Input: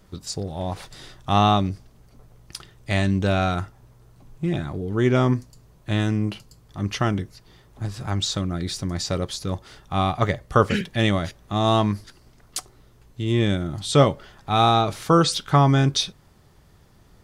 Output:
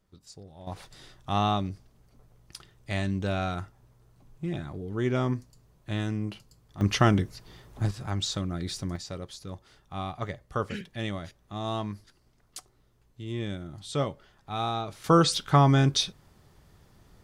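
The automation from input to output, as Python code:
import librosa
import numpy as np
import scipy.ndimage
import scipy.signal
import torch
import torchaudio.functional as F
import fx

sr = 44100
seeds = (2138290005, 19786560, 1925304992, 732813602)

y = fx.gain(x, sr, db=fx.steps((0.0, -18.0), (0.67, -8.0), (6.81, 1.5), (7.91, -5.5), (8.96, -12.5), (15.04, -3.0)))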